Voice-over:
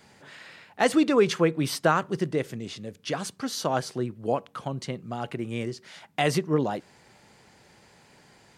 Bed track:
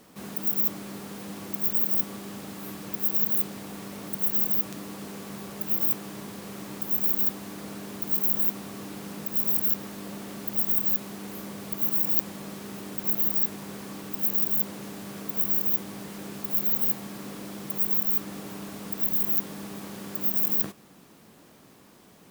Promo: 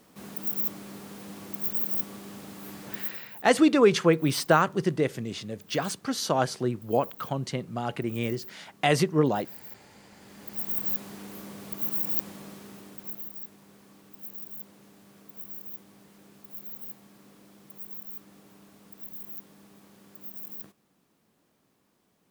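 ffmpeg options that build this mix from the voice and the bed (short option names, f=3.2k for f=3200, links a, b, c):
-filter_complex "[0:a]adelay=2650,volume=1.5dB[a];[1:a]volume=12.5dB,afade=t=out:st=2.97:d=0.23:silence=0.149624,afade=t=in:st=10.12:d=0.77:silence=0.149624,afade=t=out:st=12.28:d=1.02:silence=0.251189[b];[a][b]amix=inputs=2:normalize=0"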